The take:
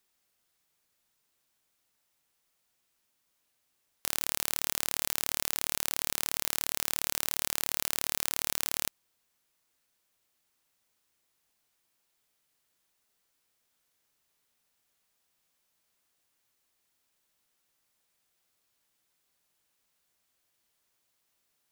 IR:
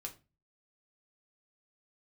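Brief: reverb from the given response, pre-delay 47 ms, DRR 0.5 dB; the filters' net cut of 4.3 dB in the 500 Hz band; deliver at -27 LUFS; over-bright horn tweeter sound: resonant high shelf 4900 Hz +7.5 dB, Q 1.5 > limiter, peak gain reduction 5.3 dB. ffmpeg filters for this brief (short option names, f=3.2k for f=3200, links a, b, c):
-filter_complex "[0:a]equalizer=f=500:t=o:g=-5.5,asplit=2[a][b];[1:a]atrim=start_sample=2205,adelay=47[c];[b][c]afir=irnorm=-1:irlink=0,volume=2.5dB[d];[a][d]amix=inputs=2:normalize=0,highshelf=f=4.9k:t=q:w=1.5:g=7.5,volume=-2dB,alimiter=limit=-4dB:level=0:latency=1"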